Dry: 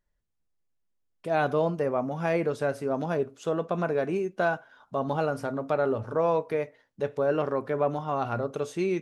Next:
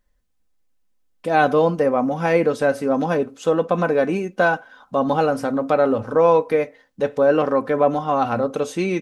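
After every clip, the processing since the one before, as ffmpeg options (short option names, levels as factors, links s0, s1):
-af "aecho=1:1:3.9:0.51,volume=2.51"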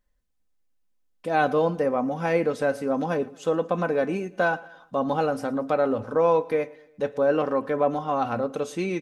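-af "aecho=1:1:115|230|345:0.0794|0.0373|0.0175,volume=0.531"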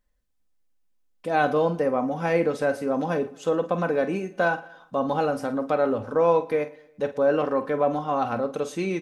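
-filter_complex "[0:a]asplit=2[s0][s1];[s1]adelay=47,volume=0.251[s2];[s0][s2]amix=inputs=2:normalize=0"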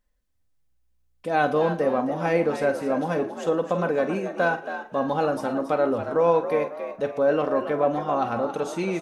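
-filter_complex "[0:a]asplit=5[s0][s1][s2][s3][s4];[s1]adelay=275,afreqshift=60,volume=0.316[s5];[s2]adelay=550,afreqshift=120,volume=0.126[s6];[s3]adelay=825,afreqshift=180,volume=0.0507[s7];[s4]adelay=1100,afreqshift=240,volume=0.0202[s8];[s0][s5][s6][s7][s8]amix=inputs=5:normalize=0"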